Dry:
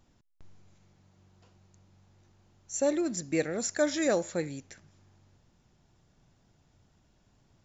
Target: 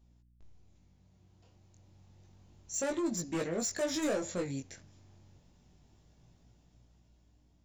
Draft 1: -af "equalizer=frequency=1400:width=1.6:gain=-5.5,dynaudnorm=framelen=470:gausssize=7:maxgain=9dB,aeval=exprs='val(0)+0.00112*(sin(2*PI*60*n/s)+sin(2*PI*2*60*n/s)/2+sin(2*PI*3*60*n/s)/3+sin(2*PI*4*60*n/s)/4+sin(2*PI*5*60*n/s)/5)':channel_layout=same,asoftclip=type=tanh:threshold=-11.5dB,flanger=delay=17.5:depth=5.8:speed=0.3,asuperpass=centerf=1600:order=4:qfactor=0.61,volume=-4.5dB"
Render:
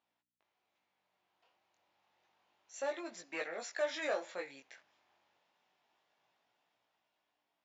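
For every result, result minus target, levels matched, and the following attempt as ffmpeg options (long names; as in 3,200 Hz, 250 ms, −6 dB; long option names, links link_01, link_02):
2,000 Hz band +7.0 dB; soft clipping: distortion −10 dB
-af "equalizer=frequency=1400:width=1.6:gain=-5.5,dynaudnorm=framelen=470:gausssize=7:maxgain=9dB,aeval=exprs='val(0)+0.00112*(sin(2*PI*60*n/s)+sin(2*PI*2*60*n/s)/2+sin(2*PI*3*60*n/s)/3+sin(2*PI*4*60*n/s)/4+sin(2*PI*5*60*n/s)/5)':channel_layout=same,asoftclip=type=tanh:threshold=-11.5dB,flanger=delay=17.5:depth=5.8:speed=0.3,volume=-4.5dB"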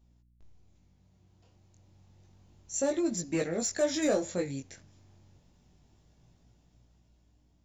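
soft clipping: distortion −10 dB
-af "equalizer=frequency=1400:width=1.6:gain=-5.5,dynaudnorm=framelen=470:gausssize=7:maxgain=9dB,aeval=exprs='val(0)+0.00112*(sin(2*PI*60*n/s)+sin(2*PI*2*60*n/s)/2+sin(2*PI*3*60*n/s)/3+sin(2*PI*4*60*n/s)/4+sin(2*PI*5*60*n/s)/5)':channel_layout=same,asoftclip=type=tanh:threshold=-21dB,flanger=delay=17.5:depth=5.8:speed=0.3,volume=-4.5dB"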